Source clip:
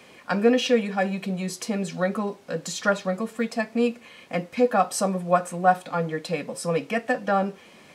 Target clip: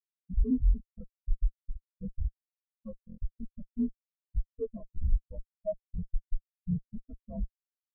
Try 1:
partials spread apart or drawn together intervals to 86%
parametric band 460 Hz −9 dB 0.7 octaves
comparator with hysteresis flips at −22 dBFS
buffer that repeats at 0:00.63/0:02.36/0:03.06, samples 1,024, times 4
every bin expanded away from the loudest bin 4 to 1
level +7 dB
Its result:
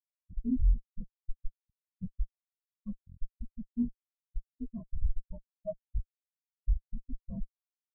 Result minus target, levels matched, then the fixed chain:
500 Hz band −4.5 dB
partials spread apart or drawn together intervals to 86%
parametric band 460 Hz −3 dB 0.7 octaves
comparator with hysteresis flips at −22 dBFS
buffer that repeats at 0:00.63/0:02.36/0:03.06, samples 1,024, times 4
every bin expanded away from the loudest bin 4 to 1
level +7 dB

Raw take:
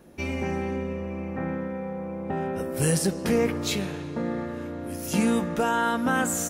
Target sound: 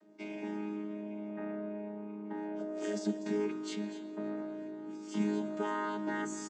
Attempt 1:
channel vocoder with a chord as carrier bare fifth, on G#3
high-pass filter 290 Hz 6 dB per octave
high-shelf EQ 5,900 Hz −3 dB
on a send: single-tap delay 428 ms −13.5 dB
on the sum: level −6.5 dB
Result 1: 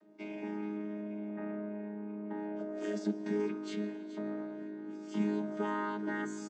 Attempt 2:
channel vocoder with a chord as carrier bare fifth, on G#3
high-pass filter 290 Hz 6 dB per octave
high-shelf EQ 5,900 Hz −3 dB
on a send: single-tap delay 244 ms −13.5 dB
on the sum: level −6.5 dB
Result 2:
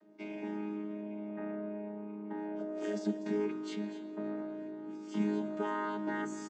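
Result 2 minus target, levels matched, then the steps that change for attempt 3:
8,000 Hz band −7.0 dB
change: high-shelf EQ 5,900 Hz +9 dB

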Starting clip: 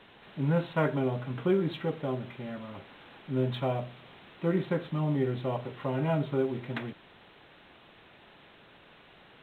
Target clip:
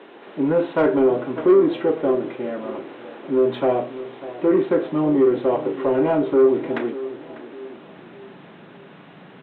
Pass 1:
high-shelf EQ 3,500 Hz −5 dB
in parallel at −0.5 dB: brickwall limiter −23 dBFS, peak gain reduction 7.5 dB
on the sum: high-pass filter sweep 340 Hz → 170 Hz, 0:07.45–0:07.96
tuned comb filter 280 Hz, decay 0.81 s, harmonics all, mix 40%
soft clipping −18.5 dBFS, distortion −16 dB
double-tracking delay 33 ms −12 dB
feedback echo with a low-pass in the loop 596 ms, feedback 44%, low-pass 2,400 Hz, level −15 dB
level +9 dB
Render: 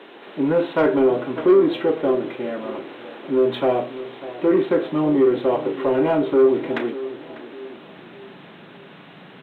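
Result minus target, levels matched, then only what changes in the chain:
4,000 Hz band +5.0 dB
change: high-shelf EQ 3,500 Hz −16.5 dB

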